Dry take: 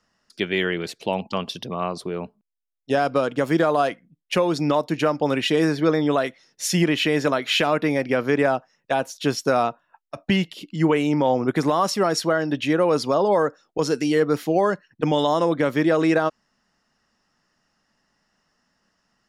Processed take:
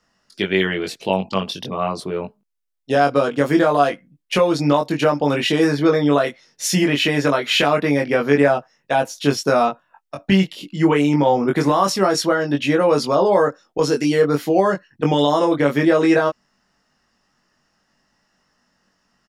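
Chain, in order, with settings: doubling 21 ms -3 dB; trim +2 dB

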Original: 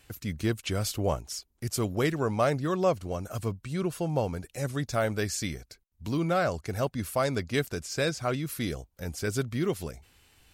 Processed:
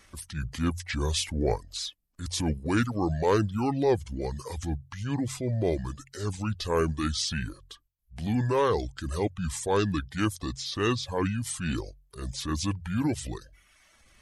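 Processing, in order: transient shaper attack -7 dB, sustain +1 dB; reverb removal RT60 0.68 s; hum notches 60/120/180 Hz; speed mistake 45 rpm record played at 33 rpm; trim +3.5 dB

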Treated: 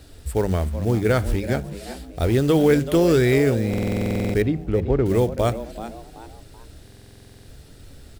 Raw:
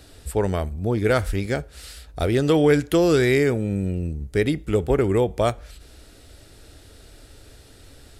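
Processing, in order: bass shelf 270 Hz +7 dB; hum notches 50/100/150/200 Hz; companded quantiser 6-bit; 4.42–5.06 s: tape spacing loss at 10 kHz 28 dB; frequency-shifting echo 381 ms, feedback 35%, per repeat +110 Hz, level -13.5 dB; buffer glitch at 3.69/6.83 s, samples 2048, times 13; trim -2 dB

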